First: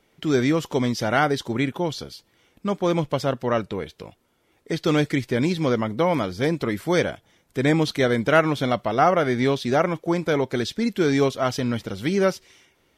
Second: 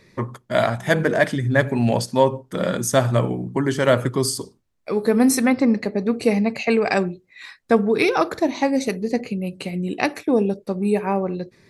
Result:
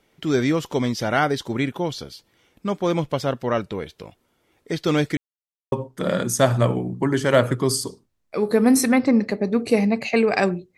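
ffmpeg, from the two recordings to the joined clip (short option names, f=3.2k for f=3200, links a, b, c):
-filter_complex "[0:a]apad=whole_dur=10.77,atrim=end=10.77,asplit=2[a][b];[a]atrim=end=5.17,asetpts=PTS-STARTPTS,afade=t=out:st=5.166:d=0.004:c=hsin[c];[b]atrim=start=5.17:end=5.72,asetpts=PTS-STARTPTS,volume=0[d];[1:a]atrim=start=2.26:end=7.31,asetpts=PTS-STARTPTS,afade=t=in:d=0.004:c=hsin[e];[c][d][e]concat=n=3:v=0:a=1"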